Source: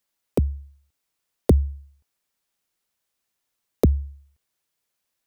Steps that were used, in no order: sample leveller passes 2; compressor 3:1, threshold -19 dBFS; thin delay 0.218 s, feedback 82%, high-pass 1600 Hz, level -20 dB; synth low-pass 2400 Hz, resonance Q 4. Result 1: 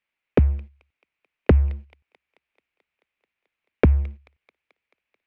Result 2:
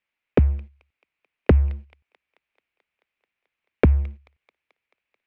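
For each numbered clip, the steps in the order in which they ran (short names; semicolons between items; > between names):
thin delay > compressor > sample leveller > synth low-pass; compressor > thin delay > sample leveller > synth low-pass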